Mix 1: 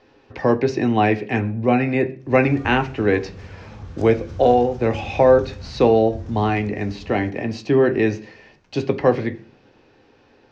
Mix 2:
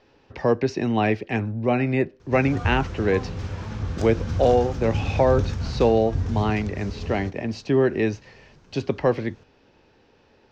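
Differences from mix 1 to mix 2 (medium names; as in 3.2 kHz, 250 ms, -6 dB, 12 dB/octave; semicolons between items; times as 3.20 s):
background +8.0 dB; reverb: off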